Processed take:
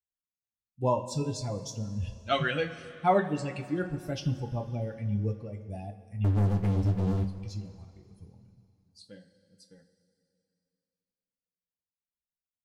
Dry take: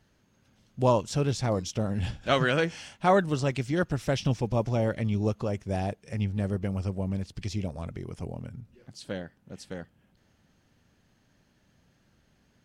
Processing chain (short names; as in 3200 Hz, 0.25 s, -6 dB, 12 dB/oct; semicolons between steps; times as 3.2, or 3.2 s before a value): per-bin expansion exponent 2; 6.24–7.25 sample leveller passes 5; two-slope reverb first 0.26 s, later 2.8 s, from -17 dB, DRR 3 dB; gain -1.5 dB